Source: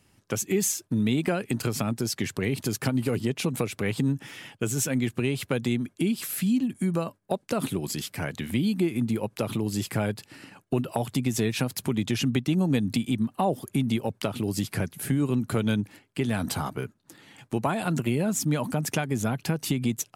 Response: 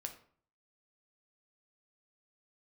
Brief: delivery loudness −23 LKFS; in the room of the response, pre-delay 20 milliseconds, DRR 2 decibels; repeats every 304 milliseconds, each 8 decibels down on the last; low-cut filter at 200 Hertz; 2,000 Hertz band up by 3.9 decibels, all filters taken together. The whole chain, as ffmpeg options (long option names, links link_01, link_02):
-filter_complex "[0:a]highpass=200,equalizer=frequency=2000:width_type=o:gain=5,aecho=1:1:304|608|912|1216|1520:0.398|0.159|0.0637|0.0255|0.0102,asplit=2[link_01][link_02];[1:a]atrim=start_sample=2205,adelay=20[link_03];[link_02][link_03]afir=irnorm=-1:irlink=0,volume=0.5dB[link_04];[link_01][link_04]amix=inputs=2:normalize=0,volume=3dB"